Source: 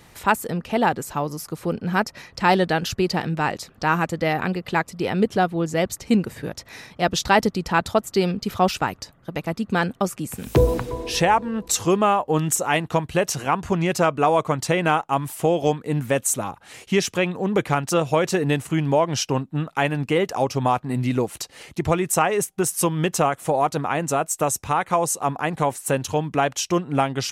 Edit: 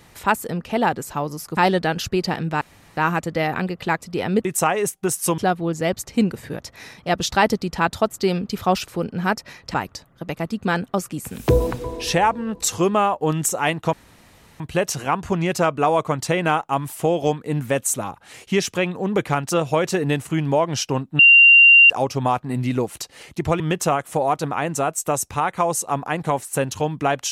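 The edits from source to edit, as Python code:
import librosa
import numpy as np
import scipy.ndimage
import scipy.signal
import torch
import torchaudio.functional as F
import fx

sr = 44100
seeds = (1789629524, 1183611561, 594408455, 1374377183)

y = fx.edit(x, sr, fx.move(start_s=1.57, length_s=0.86, to_s=8.81),
    fx.room_tone_fill(start_s=3.47, length_s=0.36),
    fx.insert_room_tone(at_s=13.0, length_s=0.67),
    fx.bleep(start_s=19.59, length_s=0.71, hz=2770.0, db=-6.5),
    fx.move(start_s=22.0, length_s=0.93, to_s=5.31), tone=tone)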